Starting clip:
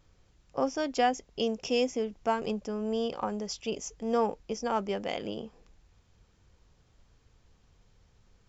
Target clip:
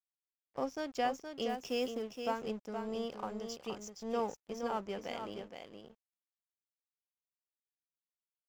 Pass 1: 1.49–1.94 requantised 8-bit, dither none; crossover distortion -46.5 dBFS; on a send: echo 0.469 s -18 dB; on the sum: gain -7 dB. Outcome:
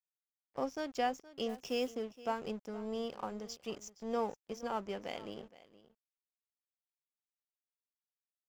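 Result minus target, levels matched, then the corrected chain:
echo-to-direct -11 dB
1.49–1.94 requantised 8-bit, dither none; crossover distortion -46.5 dBFS; on a send: echo 0.469 s -7 dB; on the sum: gain -7 dB

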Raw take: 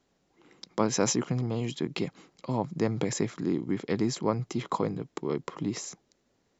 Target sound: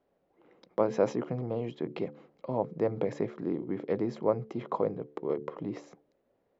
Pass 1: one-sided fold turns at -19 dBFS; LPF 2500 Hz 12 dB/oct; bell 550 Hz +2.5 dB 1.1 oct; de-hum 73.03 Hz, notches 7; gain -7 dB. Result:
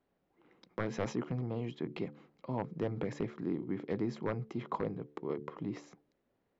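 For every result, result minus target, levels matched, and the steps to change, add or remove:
one-sided fold: distortion +36 dB; 500 Hz band -3.0 dB
change: one-sided fold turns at -10.5 dBFS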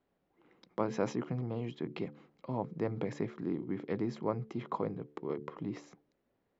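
500 Hz band -2.5 dB
change: bell 550 Hz +12 dB 1.1 oct

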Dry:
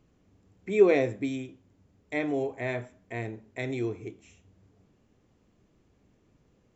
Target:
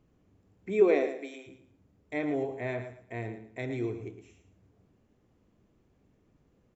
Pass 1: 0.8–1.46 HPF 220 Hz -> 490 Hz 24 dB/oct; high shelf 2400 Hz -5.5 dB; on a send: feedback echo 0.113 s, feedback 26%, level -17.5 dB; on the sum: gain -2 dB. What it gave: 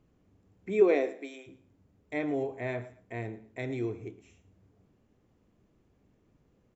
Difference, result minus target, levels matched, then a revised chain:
echo-to-direct -7.5 dB
0.8–1.46 HPF 220 Hz -> 490 Hz 24 dB/oct; high shelf 2400 Hz -5.5 dB; on a send: feedback echo 0.113 s, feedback 26%, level -10 dB; on the sum: gain -2 dB

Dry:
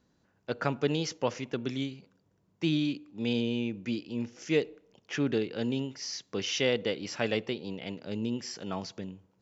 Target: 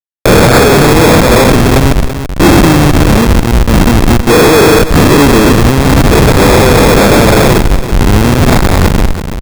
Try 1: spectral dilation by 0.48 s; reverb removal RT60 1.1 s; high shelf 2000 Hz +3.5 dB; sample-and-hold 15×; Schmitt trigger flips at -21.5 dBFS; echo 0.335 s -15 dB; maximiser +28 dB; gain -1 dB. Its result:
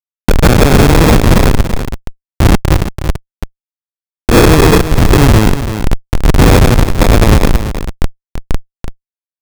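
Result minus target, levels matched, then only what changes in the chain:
Schmitt trigger: distortion +7 dB
change: Schmitt trigger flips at -29 dBFS

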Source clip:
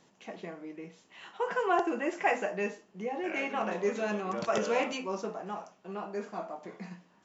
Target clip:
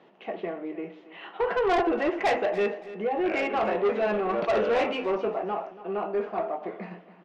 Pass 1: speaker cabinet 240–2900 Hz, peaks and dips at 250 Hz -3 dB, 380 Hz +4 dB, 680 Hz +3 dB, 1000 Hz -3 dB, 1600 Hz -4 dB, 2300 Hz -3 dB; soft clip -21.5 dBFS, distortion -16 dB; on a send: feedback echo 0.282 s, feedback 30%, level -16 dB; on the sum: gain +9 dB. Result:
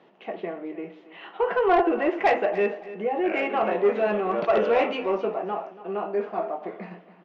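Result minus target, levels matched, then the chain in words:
soft clip: distortion -7 dB
speaker cabinet 240–2900 Hz, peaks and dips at 250 Hz -3 dB, 380 Hz +4 dB, 680 Hz +3 dB, 1000 Hz -3 dB, 1600 Hz -4 dB, 2300 Hz -3 dB; soft clip -28.5 dBFS, distortion -9 dB; on a send: feedback echo 0.282 s, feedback 30%, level -16 dB; on the sum: gain +9 dB

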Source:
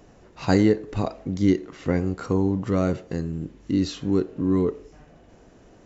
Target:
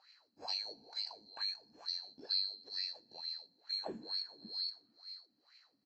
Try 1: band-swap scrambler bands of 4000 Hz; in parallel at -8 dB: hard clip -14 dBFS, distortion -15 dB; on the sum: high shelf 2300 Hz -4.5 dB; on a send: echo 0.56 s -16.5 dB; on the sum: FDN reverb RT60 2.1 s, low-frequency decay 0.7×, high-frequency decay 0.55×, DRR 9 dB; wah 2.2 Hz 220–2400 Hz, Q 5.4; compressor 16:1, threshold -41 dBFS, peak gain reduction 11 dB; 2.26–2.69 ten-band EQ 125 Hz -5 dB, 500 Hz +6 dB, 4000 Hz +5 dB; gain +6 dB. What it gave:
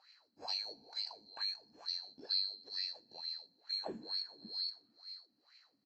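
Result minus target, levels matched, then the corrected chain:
hard clip: distortion +18 dB
band-swap scrambler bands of 4000 Hz; in parallel at -8 dB: hard clip -8 dBFS, distortion -34 dB; on the sum: high shelf 2300 Hz -4.5 dB; on a send: echo 0.56 s -16.5 dB; on the sum: FDN reverb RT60 2.1 s, low-frequency decay 0.7×, high-frequency decay 0.55×, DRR 9 dB; wah 2.2 Hz 220–2400 Hz, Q 5.4; compressor 16:1, threshold -41 dBFS, peak gain reduction 11.5 dB; 2.26–2.69 ten-band EQ 125 Hz -5 dB, 500 Hz +6 dB, 4000 Hz +5 dB; gain +6 dB

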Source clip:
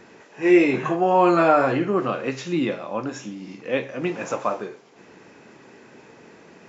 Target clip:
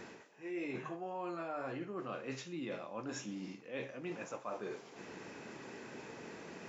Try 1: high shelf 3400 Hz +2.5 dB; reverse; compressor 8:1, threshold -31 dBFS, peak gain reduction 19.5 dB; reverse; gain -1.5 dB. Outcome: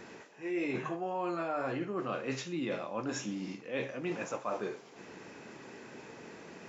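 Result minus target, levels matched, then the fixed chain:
compressor: peak gain reduction -6.5 dB
high shelf 3400 Hz +2.5 dB; reverse; compressor 8:1, threshold -38.5 dBFS, peak gain reduction 26.5 dB; reverse; gain -1.5 dB

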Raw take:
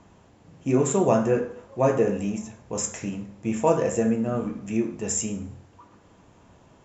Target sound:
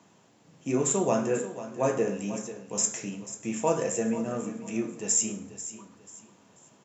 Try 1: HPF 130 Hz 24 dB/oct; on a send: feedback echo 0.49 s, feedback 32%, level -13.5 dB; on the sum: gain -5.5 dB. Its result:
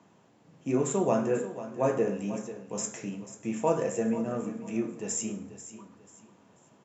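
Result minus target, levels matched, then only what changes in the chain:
8000 Hz band -6.5 dB
add after HPF: high shelf 3200 Hz +10 dB

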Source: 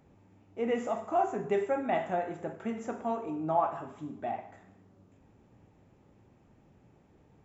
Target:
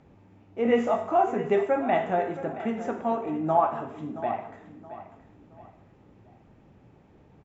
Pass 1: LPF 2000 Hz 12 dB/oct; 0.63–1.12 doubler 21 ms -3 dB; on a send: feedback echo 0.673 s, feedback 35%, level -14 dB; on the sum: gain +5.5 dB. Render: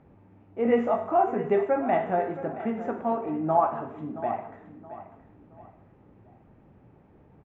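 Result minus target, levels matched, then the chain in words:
4000 Hz band -7.0 dB
LPF 5000 Hz 12 dB/oct; 0.63–1.12 doubler 21 ms -3 dB; on a send: feedback echo 0.673 s, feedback 35%, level -14 dB; on the sum: gain +5.5 dB

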